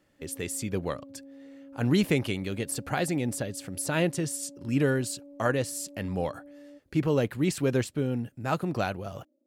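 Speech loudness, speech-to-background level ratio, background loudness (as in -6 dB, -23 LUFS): -29.5 LUFS, 19.5 dB, -49.0 LUFS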